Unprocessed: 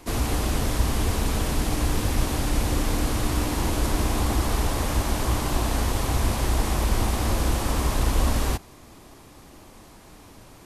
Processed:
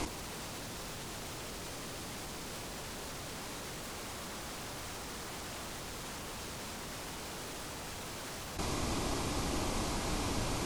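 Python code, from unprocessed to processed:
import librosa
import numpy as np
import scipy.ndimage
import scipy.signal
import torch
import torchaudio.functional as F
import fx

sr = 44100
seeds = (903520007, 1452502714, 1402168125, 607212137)

y = scipy.signal.sosfilt(scipy.signal.butter(2, 7300.0, 'lowpass', fs=sr, output='sos'), x)
y = fx.high_shelf(y, sr, hz=4900.0, db=6.5)
y = fx.notch(y, sr, hz=1800.0, q=14.0)
y = 10.0 ** (-27.5 / 20.0) * (np.abs((y / 10.0 ** (-27.5 / 20.0) + 3.0) % 4.0 - 2.0) - 1.0)
y = fx.over_compress(y, sr, threshold_db=-44.0, ratio=-1.0)
y = F.gain(torch.from_numpy(y), 3.0).numpy()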